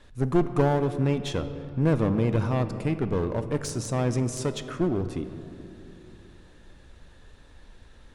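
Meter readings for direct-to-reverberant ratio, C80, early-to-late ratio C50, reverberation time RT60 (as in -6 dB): 10.0 dB, 12.0 dB, 11.0 dB, 2.7 s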